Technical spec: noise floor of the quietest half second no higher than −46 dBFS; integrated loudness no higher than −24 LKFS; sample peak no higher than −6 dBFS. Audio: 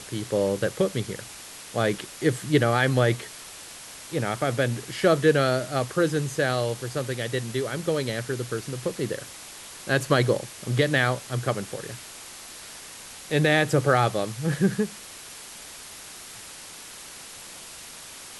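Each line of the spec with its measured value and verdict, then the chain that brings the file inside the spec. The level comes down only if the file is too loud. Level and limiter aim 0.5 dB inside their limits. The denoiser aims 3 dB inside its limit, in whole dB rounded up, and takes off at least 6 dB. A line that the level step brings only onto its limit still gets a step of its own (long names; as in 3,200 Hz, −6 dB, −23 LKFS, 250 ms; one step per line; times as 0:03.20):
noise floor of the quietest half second −42 dBFS: out of spec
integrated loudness −25.0 LKFS: in spec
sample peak −7.0 dBFS: in spec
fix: broadband denoise 7 dB, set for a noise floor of −42 dBFS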